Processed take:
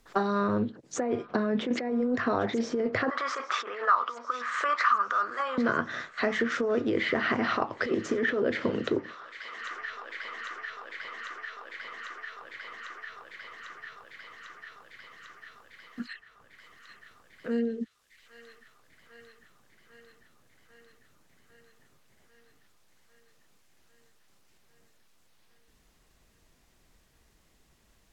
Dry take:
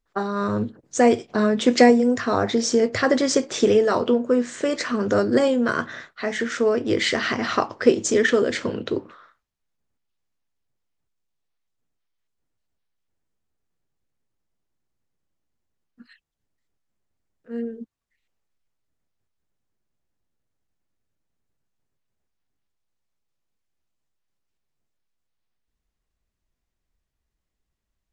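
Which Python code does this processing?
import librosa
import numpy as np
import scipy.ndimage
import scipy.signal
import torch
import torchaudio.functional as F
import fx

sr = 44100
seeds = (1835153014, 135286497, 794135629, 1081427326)

y = fx.env_lowpass_down(x, sr, base_hz=2300.0, full_db=-19.5)
y = fx.over_compress(y, sr, threshold_db=-22.0, ratio=-1.0)
y = fx.highpass_res(y, sr, hz=1200.0, q=9.5, at=(3.1, 5.58))
y = fx.echo_wet_highpass(y, sr, ms=798, feedback_pct=73, hz=1600.0, wet_db=-18)
y = fx.band_squash(y, sr, depth_pct=70)
y = y * 10.0 ** (-4.5 / 20.0)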